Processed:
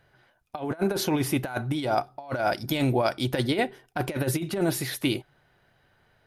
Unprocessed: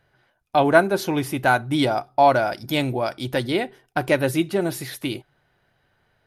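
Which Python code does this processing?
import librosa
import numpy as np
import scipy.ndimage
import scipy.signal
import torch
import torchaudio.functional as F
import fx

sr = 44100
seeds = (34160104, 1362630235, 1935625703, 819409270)

y = fx.over_compress(x, sr, threshold_db=-23.0, ratio=-0.5)
y = y * 10.0 ** (-2.0 / 20.0)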